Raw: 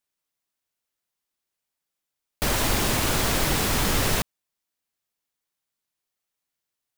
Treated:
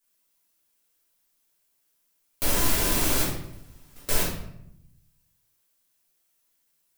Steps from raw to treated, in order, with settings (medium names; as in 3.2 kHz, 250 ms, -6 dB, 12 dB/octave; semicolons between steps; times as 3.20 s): 3.23–4.09 s: gate -16 dBFS, range -44 dB; treble shelf 6.3 kHz +11.5 dB; compression 3:1, threshold -31 dBFS, peak gain reduction 11.5 dB; reverberation RT60 0.75 s, pre-delay 3 ms, DRR -9.5 dB; trim -3.5 dB